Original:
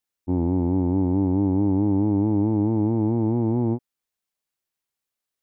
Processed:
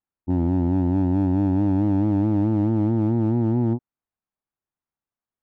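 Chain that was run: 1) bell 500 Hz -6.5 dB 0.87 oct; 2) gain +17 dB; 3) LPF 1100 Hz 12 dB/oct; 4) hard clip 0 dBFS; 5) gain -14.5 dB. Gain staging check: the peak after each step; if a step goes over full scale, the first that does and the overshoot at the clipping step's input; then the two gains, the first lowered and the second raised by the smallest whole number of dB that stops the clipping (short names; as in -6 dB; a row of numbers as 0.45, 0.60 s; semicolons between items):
-14.0, +3.0, +3.0, 0.0, -14.5 dBFS; step 2, 3.0 dB; step 2 +14 dB, step 5 -11.5 dB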